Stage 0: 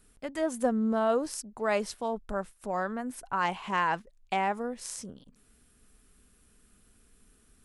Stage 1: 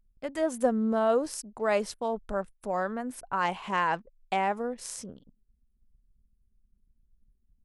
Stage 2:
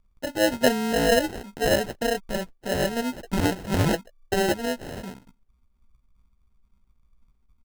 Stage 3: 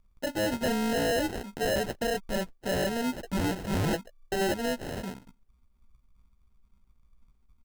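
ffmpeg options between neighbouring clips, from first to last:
-af "anlmdn=0.00158,equalizer=f=540:t=o:w=0.77:g=3"
-filter_complex "[0:a]asplit=2[a][b];[b]adelay=16,volume=-7dB[c];[a][c]amix=inputs=2:normalize=0,acrusher=samples=38:mix=1:aa=0.000001,volume=4.5dB"
-af "asoftclip=type=hard:threshold=-25dB"

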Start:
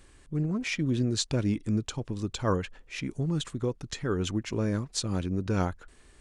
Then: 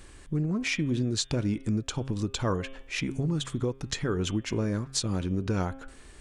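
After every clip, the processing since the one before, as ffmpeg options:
-af "bandreject=f=134:t=h:w=4,bandreject=f=268:t=h:w=4,bandreject=f=402:t=h:w=4,bandreject=f=536:t=h:w=4,bandreject=f=670:t=h:w=4,bandreject=f=804:t=h:w=4,bandreject=f=938:t=h:w=4,bandreject=f=1.072k:t=h:w=4,bandreject=f=1.206k:t=h:w=4,bandreject=f=1.34k:t=h:w=4,bandreject=f=1.474k:t=h:w=4,bandreject=f=1.608k:t=h:w=4,bandreject=f=1.742k:t=h:w=4,bandreject=f=1.876k:t=h:w=4,bandreject=f=2.01k:t=h:w=4,bandreject=f=2.144k:t=h:w=4,bandreject=f=2.278k:t=h:w=4,bandreject=f=2.412k:t=h:w=4,bandreject=f=2.546k:t=h:w=4,bandreject=f=2.68k:t=h:w=4,bandreject=f=2.814k:t=h:w=4,bandreject=f=2.948k:t=h:w=4,bandreject=f=3.082k:t=h:w=4,bandreject=f=3.216k:t=h:w=4,bandreject=f=3.35k:t=h:w=4,bandreject=f=3.484k:t=h:w=4,bandreject=f=3.618k:t=h:w=4,acompressor=threshold=-34dB:ratio=2.5,volume=6.5dB"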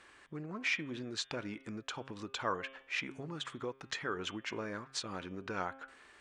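-af "bandpass=f=1.5k:t=q:w=0.84:csg=0"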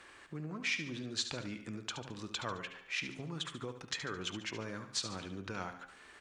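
-filter_complex "[0:a]acrossover=split=180|3000[a][b][c];[b]acompressor=threshold=-58dB:ratio=1.5[d];[a][d][c]amix=inputs=3:normalize=0,asplit=2[e][f];[f]aecho=0:1:72|144|216|288|360:0.316|0.142|0.064|0.0288|0.013[g];[e][g]amix=inputs=2:normalize=0,volume=3.5dB"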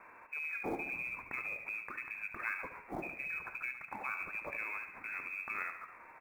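-filter_complex "[0:a]lowpass=f=2.3k:t=q:w=0.5098,lowpass=f=2.3k:t=q:w=0.6013,lowpass=f=2.3k:t=q:w=0.9,lowpass=f=2.3k:t=q:w=2.563,afreqshift=-2700,acrusher=bits=7:mode=log:mix=0:aa=0.000001,asplit=8[a][b][c][d][e][f][g][h];[b]adelay=137,afreqshift=-88,volume=-17.5dB[i];[c]adelay=274,afreqshift=-176,volume=-21.2dB[j];[d]adelay=411,afreqshift=-264,volume=-25dB[k];[e]adelay=548,afreqshift=-352,volume=-28.7dB[l];[f]adelay=685,afreqshift=-440,volume=-32.5dB[m];[g]adelay=822,afreqshift=-528,volume=-36.2dB[n];[h]adelay=959,afreqshift=-616,volume=-40dB[o];[a][i][j][k][l][m][n][o]amix=inputs=8:normalize=0,volume=1.5dB"

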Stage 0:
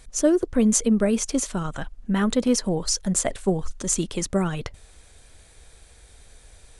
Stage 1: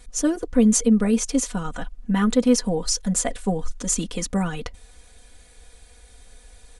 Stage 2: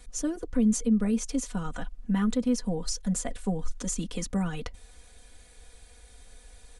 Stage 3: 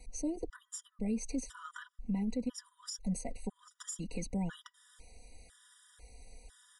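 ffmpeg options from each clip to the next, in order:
-af "aecho=1:1:4.1:0.88,volume=-2dB"
-filter_complex "[0:a]acrossover=split=220[a][b];[b]acompressor=threshold=-33dB:ratio=2[c];[a][c]amix=inputs=2:normalize=0,volume=-3dB"
-af "alimiter=level_in=0.5dB:limit=-24dB:level=0:latency=1:release=209,volume=-0.5dB,afftfilt=real='re*gt(sin(2*PI*1*pts/sr)*(1-2*mod(floor(b*sr/1024/970),2)),0)':imag='im*gt(sin(2*PI*1*pts/sr)*(1-2*mod(floor(b*sr/1024/970),2)),0)':win_size=1024:overlap=0.75,volume=-2dB"

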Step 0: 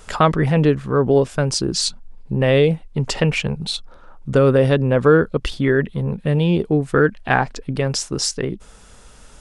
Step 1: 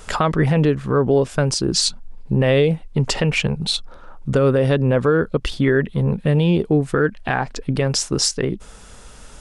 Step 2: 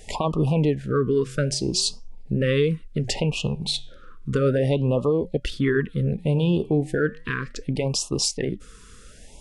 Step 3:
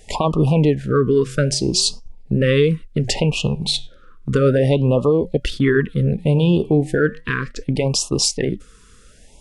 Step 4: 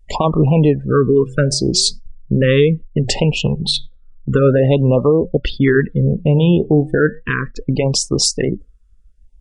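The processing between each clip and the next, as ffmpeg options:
-af "alimiter=limit=-11dB:level=0:latency=1:release=227,volume=3.5dB"
-af "flanger=delay=2.6:depth=8.8:regen=-88:speed=0.37:shape=sinusoidal,afftfilt=real='re*(1-between(b*sr/1024,690*pow(1800/690,0.5+0.5*sin(2*PI*0.65*pts/sr))/1.41,690*pow(1800/690,0.5+0.5*sin(2*PI*0.65*pts/sr))*1.41))':imag='im*(1-between(b*sr/1024,690*pow(1800/690,0.5+0.5*sin(2*PI*0.65*pts/sr))/1.41,690*pow(1800/690,0.5+0.5*sin(2*PI*0.65*pts/sr))*1.41))':win_size=1024:overlap=0.75"
-af "agate=range=-7dB:threshold=-34dB:ratio=16:detection=peak,volume=5.5dB"
-af "afftdn=nr=33:nf=-32,volume=3dB"

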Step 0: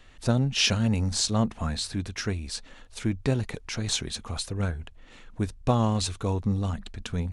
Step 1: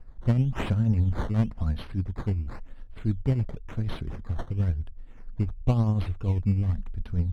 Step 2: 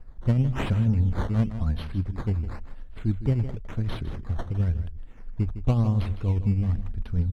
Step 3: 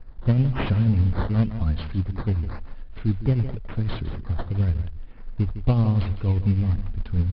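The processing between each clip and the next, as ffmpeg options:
-af "tremolo=f=10:d=0.44,acrusher=samples=12:mix=1:aa=0.000001:lfo=1:lforange=12:lforate=0.96,aemphasis=mode=reproduction:type=riaa,volume=-7.5dB"
-af "aecho=1:1:158:0.224,aeval=exprs='0.335*(cos(1*acos(clip(val(0)/0.335,-1,1)))-cos(1*PI/2))+0.015*(cos(5*acos(clip(val(0)/0.335,-1,1)))-cos(5*PI/2))':c=same"
-filter_complex "[0:a]asplit=2[a][b];[b]acrusher=bits=4:mode=log:mix=0:aa=0.000001,volume=-9.5dB[c];[a][c]amix=inputs=2:normalize=0,aresample=11025,aresample=44100"

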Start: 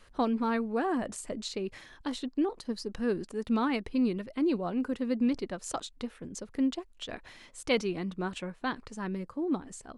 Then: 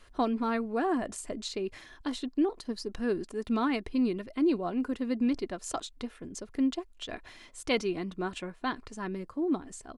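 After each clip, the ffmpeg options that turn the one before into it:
-af "aecho=1:1:2.9:0.3"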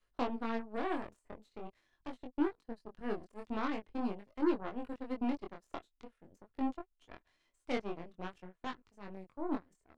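-filter_complex "[0:a]acrossover=split=360|620|2300[a][b][c][d];[d]acompressor=threshold=-54dB:ratio=6[e];[a][b][c][e]amix=inputs=4:normalize=0,aeval=exprs='0.178*(cos(1*acos(clip(val(0)/0.178,-1,1)))-cos(1*PI/2))+0.0224*(cos(7*acos(clip(val(0)/0.178,-1,1)))-cos(7*PI/2))+0.0112*(cos(8*acos(clip(val(0)/0.178,-1,1)))-cos(8*PI/2))':c=same,flanger=delay=20:depth=4.5:speed=0.45,volume=-3dB"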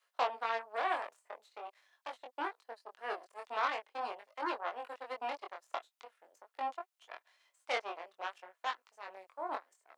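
-af "highpass=f=600:w=0.5412,highpass=f=600:w=1.3066,volume=6.5dB"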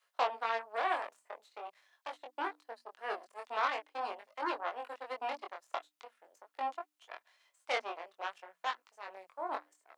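-af "bandreject=f=60:t=h:w=6,bandreject=f=120:t=h:w=6,bandreject=f=180:t=h:w=6,bandreject=f=240:t=h:w=6,bandreject=f=300:t=h:w=6,volume=1dB"

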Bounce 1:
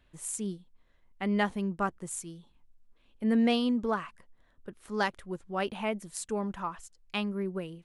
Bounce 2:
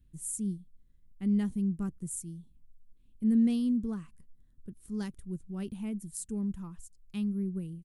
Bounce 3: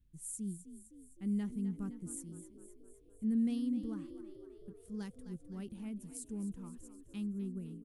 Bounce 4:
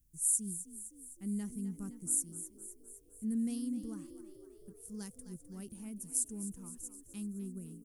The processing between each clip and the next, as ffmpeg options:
-af "firequalizer=gain_entry='entry(160,0);entry(610,-27);entry(9000,-4)':delay=0.05:min_phase=1,volume=5dB"
-filter_complex "[0:a]asplit=8[a][b][c][d][e][f][g][h];[b]adelay=257,afreqshift=41,volume=-13dB[i];[c]adelay=514,afreqshift=82,volume=-17.4dB[j];[d]adelay=771,afreqshift=123,volume=-21.9dB[k];[e]adelay=1028,afreqshift=164,volume=-26.3dB[l];[f]adelay=1285,afreqshift=205,volume=-30.7dB[m];[g]adelay=1542,afreqshift=246,volume=-35.2dB[n];[h]adelay=1799,afreqshift=287,volume=-39.6dB[o];[a][i][j][k][l][m][n][o]amix=inputs=8:normalize=0,volume=-7dB"
-af "aexciter=amount=5.9:drive=5.3:freq=5.2k,volume=-2.5dB"

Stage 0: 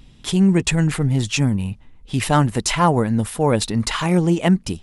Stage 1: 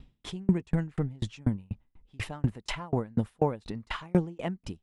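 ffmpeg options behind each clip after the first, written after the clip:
-af "aemphasis=mode=reproduction:type=75kf,aeval=exprs='val(0)*pow(10,-36*if(lt(mod(4.1*n/s,1),2*abs(4.1)/1000),1-mod(4.1*n/s,1)/(2*abs(4.1)/1000),(mod(4.1*n/s,1)-2*abs(4.1)/1000)/(1-2*abs(4.1)/1000))/20)':c=same,volume=-2.5dB"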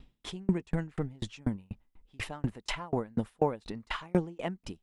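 -af "equalizer=f=99:t=o:w=2:g=-7"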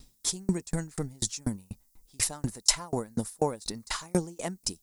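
-af "aexciter=amount=7.5:drive=8.8:freq=4.5k"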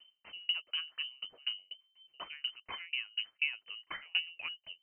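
-af "lowpass=f=2.6k:t=q:w=0.5098,lowpass=f=2.6k:t=q:w=0.6013,lowpass=f=2.6k:t=q:w=0.9,lowpass=f=2.6k:t=q:w=2.563,afreqshift=-3100,volume=-6.5dB"

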